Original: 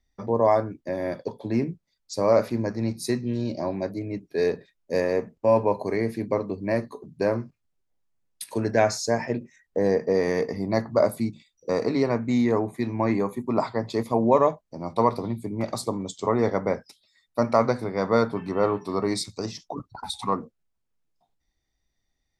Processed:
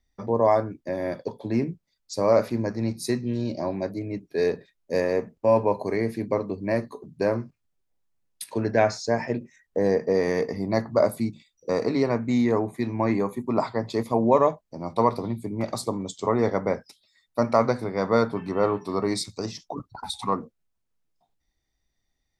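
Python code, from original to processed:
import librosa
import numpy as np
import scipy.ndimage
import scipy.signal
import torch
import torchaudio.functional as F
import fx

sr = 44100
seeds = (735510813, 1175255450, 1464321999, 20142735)

y = fx.lowpass(x, sr, hz=4800.0, slope=12, at=(8.5, 9.18))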